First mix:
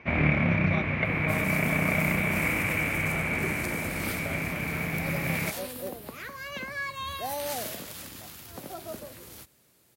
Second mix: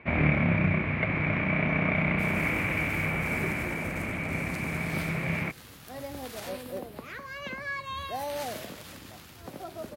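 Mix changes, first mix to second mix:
speech: muted; second sound: entry +0.90 s; master: add low-pass 3.6 kHz 6 dB/octave

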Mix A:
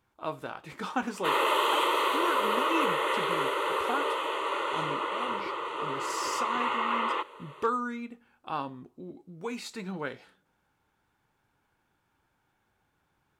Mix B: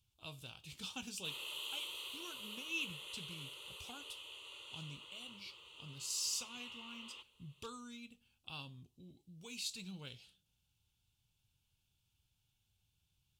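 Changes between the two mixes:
background -11.0 dB; master: add FFT filter 110 Hz 0 dB, 300 Hz -20 dB, 1.9 kHz -24 dB, 2.8 kHz +1 dB

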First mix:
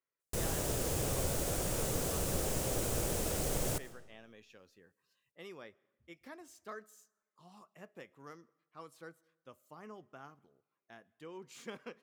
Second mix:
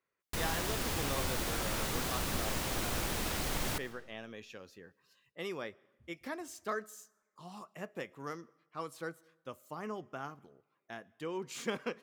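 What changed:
speech +9.5 dB; background: add graphic EQ 125/250/500/1000/2000/4000/8000 Hz -4/+3/-8/+6/+6/+6/-5 dB

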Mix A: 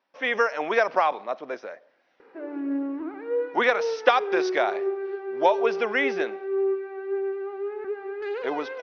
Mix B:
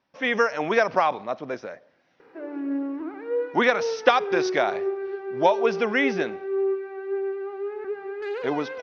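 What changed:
speech: remove high-pass 370 Hz 12 dB/octave; master: remove distance through air 73 m

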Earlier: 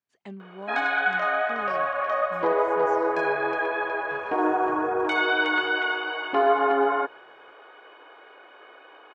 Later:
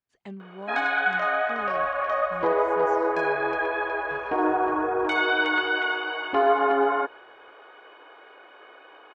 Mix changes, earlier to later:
second sound -6.0 dB; master: remove high-pass 140 Hz 12 dB/octave

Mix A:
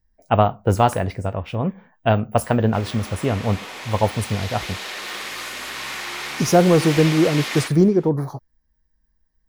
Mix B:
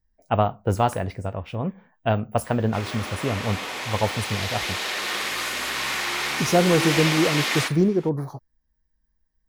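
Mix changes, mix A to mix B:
speech -4.5 dB; background +3.5 dB

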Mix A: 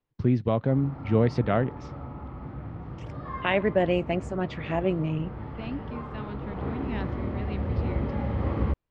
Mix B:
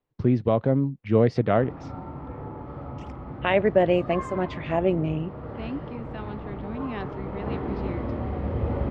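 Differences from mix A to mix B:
background: entry +0.85 s; master: add peaking EQ 530 Hz +4.5 dB 1.9 oct

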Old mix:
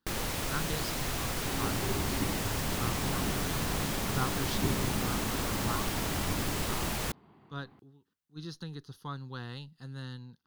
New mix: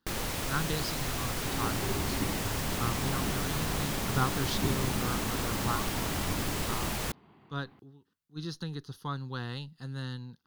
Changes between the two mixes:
speech +4.0 dB; second sound: add peaking EQ 2.7 kHz +4.5 dB 1.2 oct

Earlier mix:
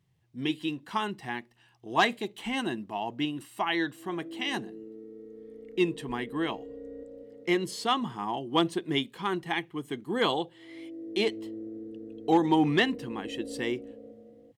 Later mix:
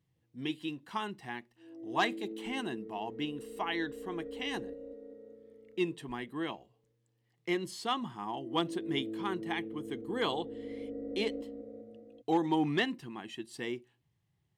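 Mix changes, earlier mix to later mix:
speech -6.0 dB; background: entry -2.30 s

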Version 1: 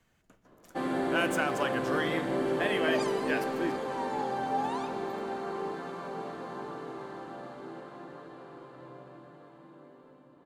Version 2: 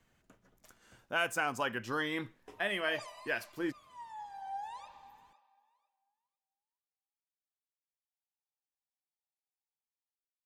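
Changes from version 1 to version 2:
first sound: muted; second sound -9.0 dB; reverb: off

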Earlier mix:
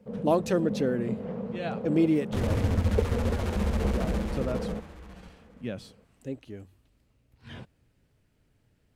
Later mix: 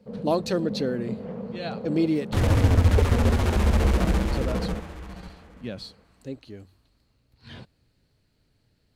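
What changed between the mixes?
speech: add peaking EQ 4.3 kHz +14 dB 0.33 oct; second sound +7.5 dB

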